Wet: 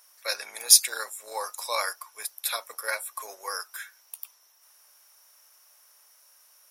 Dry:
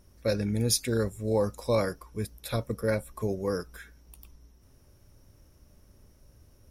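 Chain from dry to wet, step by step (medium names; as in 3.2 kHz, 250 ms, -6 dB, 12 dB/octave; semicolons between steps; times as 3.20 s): octave divider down 2 oct, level +2 dB; high-pass 860 Hz 24 dB/octave; treble shelf 6.5 kHz +8.5 dB; trim +6.5 dB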